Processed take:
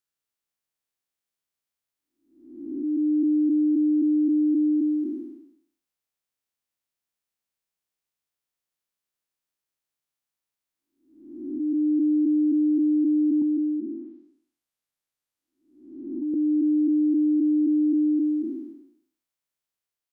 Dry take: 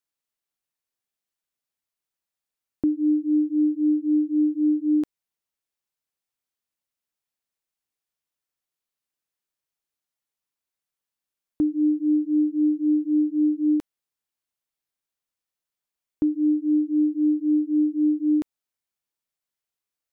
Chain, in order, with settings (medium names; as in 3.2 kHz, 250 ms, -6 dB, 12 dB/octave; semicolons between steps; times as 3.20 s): spectral blur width 514 ms; 13.41–16.34 s: low-pass that closes with the level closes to 380 Hz, closed at -27 dBFS; trim +1.5 dB